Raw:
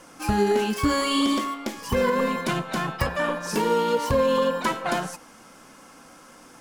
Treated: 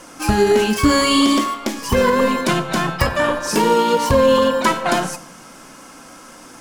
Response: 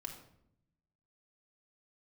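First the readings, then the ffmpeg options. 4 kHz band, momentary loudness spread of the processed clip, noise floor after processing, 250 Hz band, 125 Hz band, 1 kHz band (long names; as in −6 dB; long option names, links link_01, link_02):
+8.5 dB, 7 LU, −41 dBFS, +7.5 dB, +7.0 dB, +7.5 dB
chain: -filter_complex "[0:a]asplit=2[link_01][link_02];[link_02]equalizer=frequency=7100:width_type=o:width=1.9:gain=7[link_03];[1:a]atrim=start_sample=2205[link_04];[link_03][link_04]afir=irnorm=-1:irlink=0,volume=-5dB[link_05];[link_01][link_05]amix=inputs=2:normalize=0,volume=5dB"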